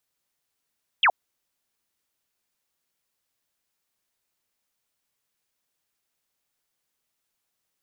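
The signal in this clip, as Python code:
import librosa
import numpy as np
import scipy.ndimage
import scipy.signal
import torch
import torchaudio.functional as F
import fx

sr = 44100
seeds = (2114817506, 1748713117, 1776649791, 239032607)

y = fx.laser_zap(sr, level_db=-14.5, start_hz=3500.0, end_hz=640.0, length_s=0.07, wave='sine')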